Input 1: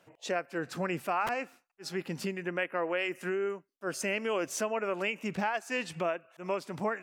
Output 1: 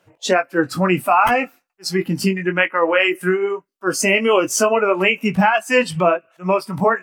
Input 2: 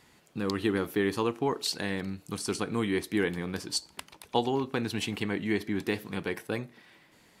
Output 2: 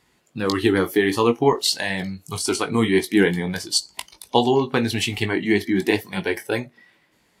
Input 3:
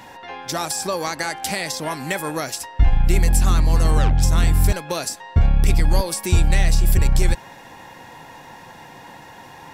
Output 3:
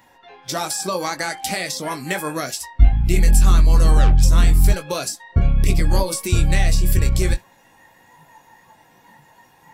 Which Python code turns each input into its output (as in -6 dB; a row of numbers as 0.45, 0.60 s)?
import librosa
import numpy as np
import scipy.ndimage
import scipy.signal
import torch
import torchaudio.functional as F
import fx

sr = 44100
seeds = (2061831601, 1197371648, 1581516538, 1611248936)

y = fx.noise_reduce_blind(x, sr, reduce_db=13)
y = fx.chorus_voices(y, sr, voices=6, hz=1.4, base_ms=19, depth_ms=3.0, mix_pct=30)
y = y * 10.0 ** (-1.5 / 20.0) / np.max(np.abs(y))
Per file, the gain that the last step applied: +19.0, +13.0, +3.0 dB